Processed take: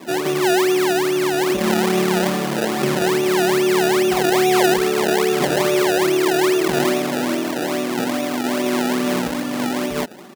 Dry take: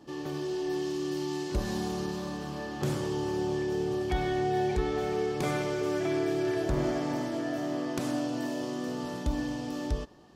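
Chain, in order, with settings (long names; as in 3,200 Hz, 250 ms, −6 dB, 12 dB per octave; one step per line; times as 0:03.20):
parametric band 270 Hz +8 dB 0.34 octaves
in parallel at +0.5 dB: compressor whose output falls as the input rises −33 dBFS, ratio −1
on the sum: comb filter 5.2 ms, depth 72%
sample-and-hold swept by an LFO 28×, swing 100% 2.4 Hz
high-pass filter 200 Hz 12 dB per octave
level +5.5 dB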